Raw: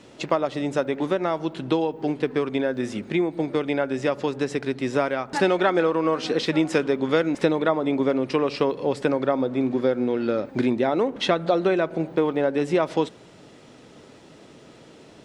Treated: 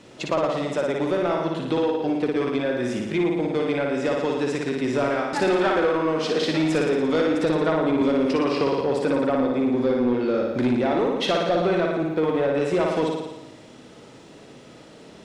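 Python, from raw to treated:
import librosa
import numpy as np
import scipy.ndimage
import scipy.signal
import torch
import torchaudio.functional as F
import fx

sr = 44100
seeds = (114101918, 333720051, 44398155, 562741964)

y = fx.room_flutter(x, sr, wall_m=9.8, rt60_s=1.0)
y = 10.0 ** (-14.0 / 20.0) * np.tanh(y / 10.0 ** (-14.0 / 20.0))
y = fx.band_squash(y, sr, depth_pct=70, at=(8.01, 8.81))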